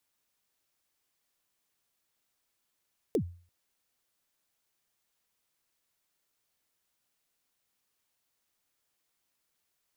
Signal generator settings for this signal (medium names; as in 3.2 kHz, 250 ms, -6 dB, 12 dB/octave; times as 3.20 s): kick drum length 0.34 s, from 510 Hz, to 87 Hz, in 83 ms, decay 0.42 s, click on, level -21 dB